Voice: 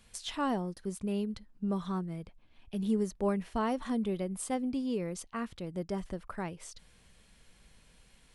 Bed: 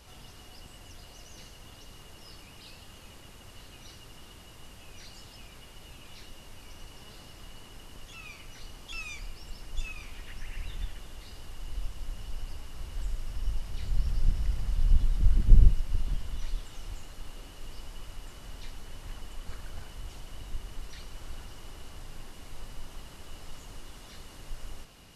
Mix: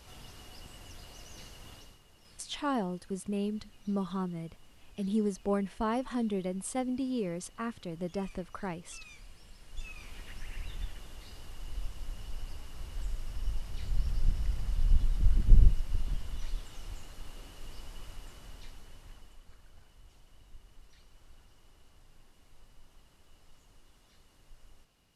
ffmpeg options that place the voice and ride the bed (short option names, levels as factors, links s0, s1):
-filter_complex "[0:a]adelay=2250,volume=1[s0];[1:a]volume=2.66,afade=t=out:st=1.73:d=0.26:silence=0.281838,afade=t=in:st=9.59:d=0.59:silence=0.354813,afade=t=out:st=18.08:d=1.41:silence=0.223872[s1];[s0][s1]amix=inputs=2:normalize=0"